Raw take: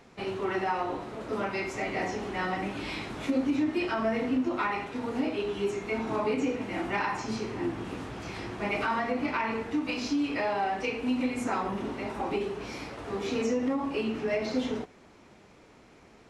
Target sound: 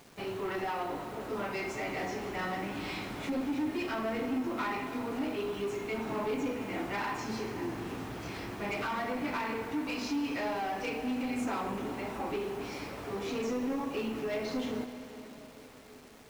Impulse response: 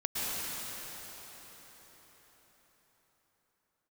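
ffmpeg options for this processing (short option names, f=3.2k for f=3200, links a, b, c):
-filter_complex "[0:a]asoftclip=type=tanh:threshold=-27dB,acrusher=bits=8:mix=0:aa=0.000001,asplit=2[a][b];[1:a]atrim=start_sample=2205,adelay=7[c];[b][c]afir=irnorm=-1:irlink=0,volume=-17dB[d];[a][d]amix=inputs=2:normalize=0,volume=-2dB"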